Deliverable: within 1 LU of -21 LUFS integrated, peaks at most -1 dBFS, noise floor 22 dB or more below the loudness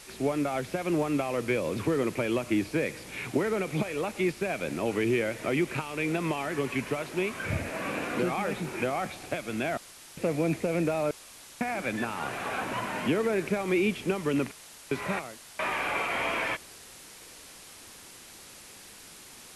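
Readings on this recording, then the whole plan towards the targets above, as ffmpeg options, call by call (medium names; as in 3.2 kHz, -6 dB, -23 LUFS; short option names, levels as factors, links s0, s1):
noise floor -49 dBFS; noise floor target -52 dBFS; loudness -30.0 LUFS; peak level -15.0 dBFS; loudness target -21.0 LUFS
-> -af "afftdn=nr=6:nf=-49"
-af "volume=2.82"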